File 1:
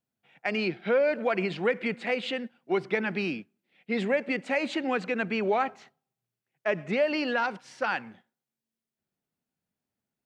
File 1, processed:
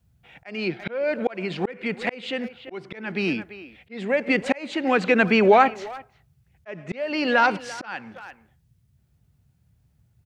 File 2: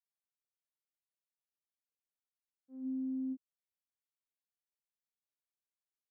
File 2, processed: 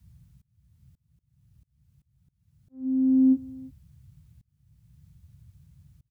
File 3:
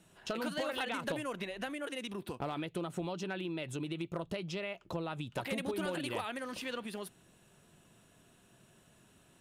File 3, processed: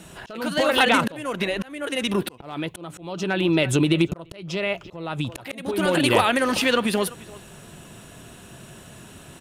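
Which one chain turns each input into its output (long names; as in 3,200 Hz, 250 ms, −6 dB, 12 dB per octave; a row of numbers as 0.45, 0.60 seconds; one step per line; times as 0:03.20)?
far-end echo of a speakerphone 340 ms, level −19 dB
noise in a band 51–150 Hz −73 dBFS
volume swells 593 ms
loudness normalisation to −23 LKFS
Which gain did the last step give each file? +11.0, +19.5, +19.5 decibels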